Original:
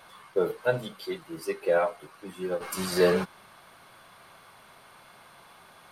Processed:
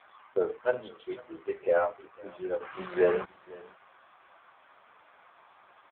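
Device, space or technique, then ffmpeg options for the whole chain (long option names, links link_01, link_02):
satellite phone: -af "highpass=340,lowpass=3000,aecho=1:1:499:0.0794" -ar 8000 -c:a libopencore_amrnb -b:a 5900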